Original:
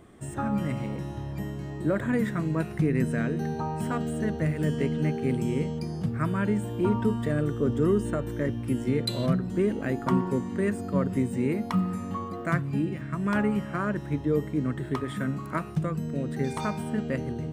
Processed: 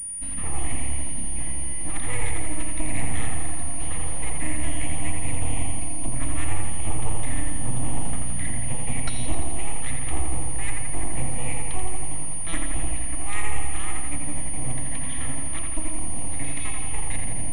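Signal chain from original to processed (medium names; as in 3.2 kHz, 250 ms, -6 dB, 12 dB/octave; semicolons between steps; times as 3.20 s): elliptic band-stop 230–1600 Hz; full-wave rectifier; static phaser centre 1.5 kHz, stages 6; on a send: feedback echo behind a low-pass 84 ms, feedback 68%, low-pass 3.2 kHz, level -3.5 dB; on the sum: class-D stage that switches slowly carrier 9.5 kHz; trim +6.5 dB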